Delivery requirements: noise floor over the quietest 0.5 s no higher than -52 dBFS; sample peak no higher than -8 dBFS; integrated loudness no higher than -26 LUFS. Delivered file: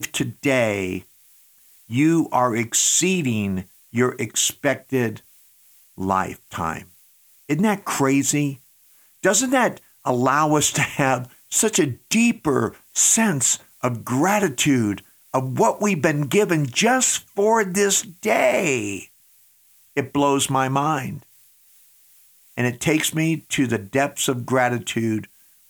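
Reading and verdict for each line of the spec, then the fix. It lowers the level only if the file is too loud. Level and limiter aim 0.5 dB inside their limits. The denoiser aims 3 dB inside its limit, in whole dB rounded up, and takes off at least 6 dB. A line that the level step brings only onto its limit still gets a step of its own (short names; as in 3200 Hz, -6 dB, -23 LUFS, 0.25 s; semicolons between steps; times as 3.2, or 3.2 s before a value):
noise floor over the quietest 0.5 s -56 dBFS: OK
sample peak -5.5 dBFS: fail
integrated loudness -20.5 LUFS: fail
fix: gain -6 dB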